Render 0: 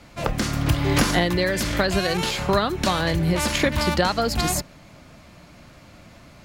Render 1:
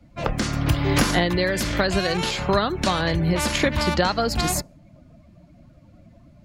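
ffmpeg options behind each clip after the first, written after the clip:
-af "afftdn=nr=18:nf=-42"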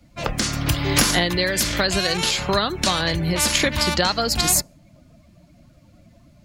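-af "highshelf=f=2800:g=11.5,volume=0.841"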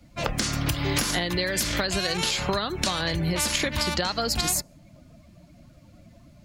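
-af "acompressor=threshold=0.0794:ratio=6"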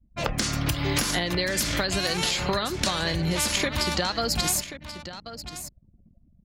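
-af "aecho=1:1:1083:0.237,anlmdn=0.251"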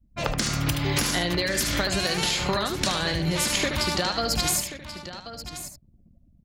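-af "aecho=1:1:75:0.422"

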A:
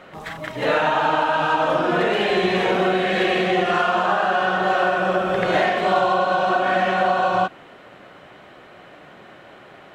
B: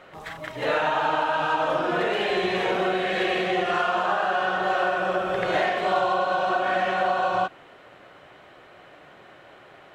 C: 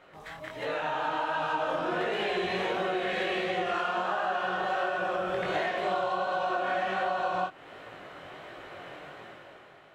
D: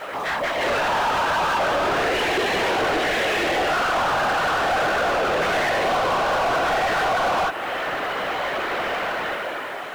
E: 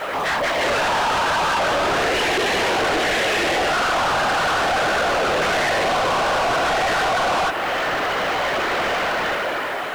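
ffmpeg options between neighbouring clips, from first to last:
-af "equalizer=f=210:t=o:w=0.82:g=-6,volume=0.631"
-af "dynaudnorm=f=160:g=11:m=3.98,flanger=delay=17.5:depth=5.8:speed=1.4,acompressor=threshold=0.0316:ratio=2,volume=0.631"
-filter_complex "[0:a]afftfilt=real='hypot(re,im)*cos(2*PI*random(0))':imag='hypot(re,im)*sin(2*PI*random(1))':win_size=512:overlap=0.75,asplit=2[s0][s1];[s1]highpass=f=720:p=1,volume=39.8,asoftclip=type=tanh:threshold=0.0891[s2];[s0][s2]amix=inputs=2:normalize=0,lowpass=f=2500:p=1,volume=0.501,asplit=2[s3][s4];[s4]acrusher=bits=6:mix=0:aa=0.000001,volume=0.282[s5];[s3][s5]amix=inputs=2:normalize=0,volume=1.68"
-af "asoftclip=type=tanh:threshold=0.0562,volume=2.24"

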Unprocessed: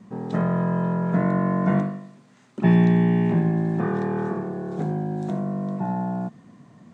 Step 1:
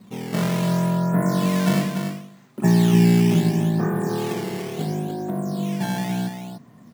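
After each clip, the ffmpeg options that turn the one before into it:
-filter_complex "[0:a]acrossover=split=2900[s0][s1];[s1]acompressor=threshold=0.00178:ratio=4:attack=1:release=60[s2];[s0][s2]amix=inputs=2:normalize=0,acrusher=samples=10:mix=1:aa=0.000001:lfo=1:lforange=16:lforate=0.72,aecho=1:1:292:0.447"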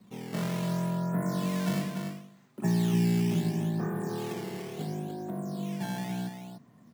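-filter_complex "[0:a]acrossover=split=190|3000[s0][s1][s2];[s1]acompressor=threshold=0.0794:ratio=2[s3];[s0][s3][s2]amix=inputs=3:normalize=0,volume=0.355"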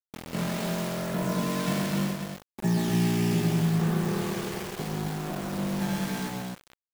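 -filter_complex "[0:a]aeval=exprs='val(0)*gte(abs(val(0)),0.0178)':c=same,asplit=2[s0][s1];[s1]aecho=0:1:134.1|256.6:0.631|0.708[s2];[s0][s2]amix=inputs=2:normalize=0,volume=1.19"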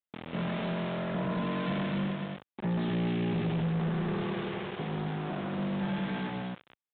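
-af "highpass=92,aresample=8000,asoftclip=type=tanh:threshold=0.0473,aresample=44100"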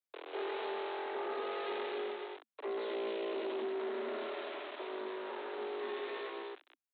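-filter_complex "[0:a]afreqshift=220,asubboost=boost=7.5:cutoff=160,acrossover=split=120|500[s0][s1][s2];[s0]acrusher=bits=3:mode=log:mix=0:aa=0.000001[s3];[s3][s1][s2]amix=inputs=3:normalize=0,volume=0.562"

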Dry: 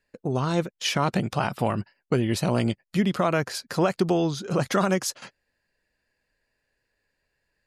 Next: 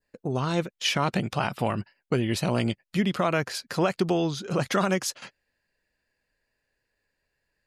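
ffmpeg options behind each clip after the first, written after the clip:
-af "adynamicequalizer=threshold=0.00891:dfrequency=2700:dqfactor=1:tfrequency=2700:tqfactor=1:attack=5:release=100:ratio=0.375:range=2:mode=boostabove:tftype=bell,volume=0.794"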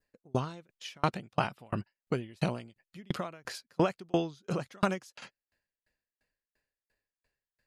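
-af "aeval=exprs='val(0)*pow(10,-37*if(lt(mod(2.9*n/s,1),2*abs(2.9)/1000),1-mod(2.9*n/s,1)/(2*abs(2.9)/1000),(mod(2.9*n/s,1)-2*abs(2.9)/1000)/(1-2*abs(2.9)/1000))/20)':c=same,volume=1.19"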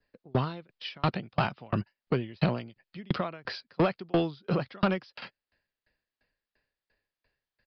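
-filter_complex "[0:a]acrossover=split=180[s0][s1];[s1]asoftclip=type=tanh:threshold=0.0596[s2];[s0][s2]amix=inputs=2:normalize=0,aresample=11025,aresample=44100,volume=1.88"

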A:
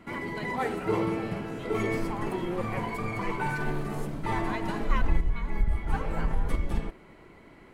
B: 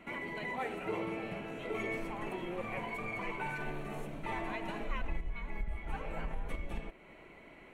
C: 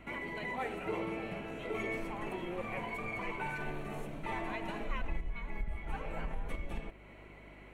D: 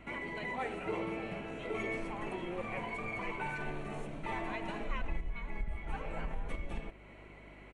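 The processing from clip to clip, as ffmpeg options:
-af "equalizer=f=100:t=o:w=0.67:g=-6,equalizer=f=630:t=o:w=0.67:g=6,equalizer=f=2500:t=o:w=0.67:g=10,acompressor=threshold=0.0112:ratio=1.5,bandreject=f=4900:w=5.7,volume=0.562"
-af "aeval=exprs='val(0)+0.00158*(sin(2*PI*50*n/s)+sin(2*PI*2*50*n/s)/2+sin(2*PI*3*50*n/s)/3+sin(2*PI*4*50*n/s)/4+sin(2*PI*5*50*n/s)/5)':c=same"
-af "aresample=22050,aresample=44100"

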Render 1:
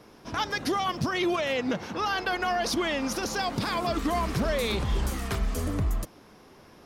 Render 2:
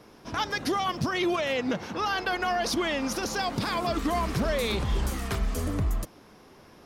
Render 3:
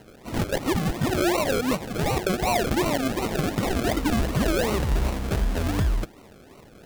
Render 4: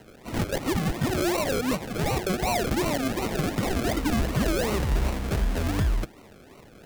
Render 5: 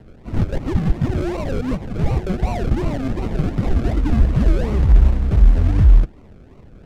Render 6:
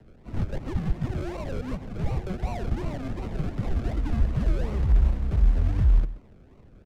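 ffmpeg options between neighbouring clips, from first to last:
-af anull
-af "acrusher=samples=37:mix=1:aa=0.000001:lfo=1:lforange=22.2:lforate=2.7,volume=1.58"
-filter_complex "[0:a]equalizer=f=2100:w=1.5:g=2,acrossover=split=210|3000[s0][s1][s2];[s1]asoftclip=type=tanh:threshold=0.133[s3];[s0][s3][s2]amix=inputs=3:normalize=0,volume=0.891"
-af "acrusher=bits=2:mode=log:mix=0:aa=0.000001,aemphasis=mode=reproduction:type=riaa,volume=0.708"
-filter_complex "[0:a]acrossover=split=240|350|1300[s0][s1][s2][s3];[s1]acompressor=threshold=0.01:ratio=6[s4];[s0][s4][s2][s3]amix=inputs=4:normalize=0,asplit=2[s5][s6];[s6]adelay=128.3,volume=0.178,highshelf=f=4000:g=-2.89[s7];[s5][s7]amix=inputs=2:normalize=0,volume=0.376"

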